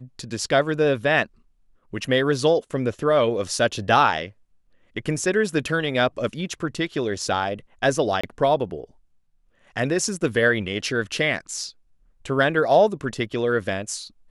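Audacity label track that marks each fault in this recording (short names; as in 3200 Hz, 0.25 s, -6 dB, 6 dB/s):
8.210000	8.230000	gap 25 ms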